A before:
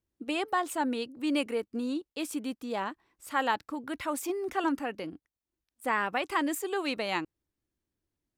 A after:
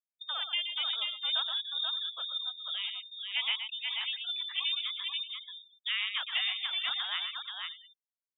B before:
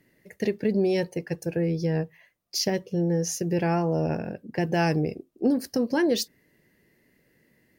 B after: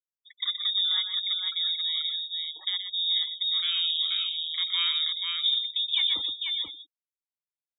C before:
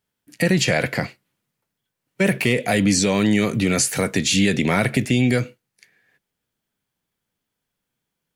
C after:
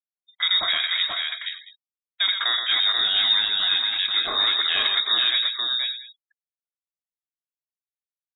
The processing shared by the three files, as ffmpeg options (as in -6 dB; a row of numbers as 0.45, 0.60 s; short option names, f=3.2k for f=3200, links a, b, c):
-af "lowpass=f=3.3k:t=q:w=0.5098,lowpass=f=3.3k:t=q:w=0.6013,lowpass=f=3.3k:t=q:w=0.9,lowpass=f=3.3k:t=q:w=2.563,afreqshift=-3900,aecho=1:1:122|484|578|685:0.447|0.631|0.158|0.112,afftfilt=real='re*gte(hypot(re,im),0.0141)':imag='im*gte(hypot(re,im),0.0141)':win_size=1024:overlap=0.75,volume=-4.5dB"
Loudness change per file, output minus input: 0.0, +1.0, -0.5 LU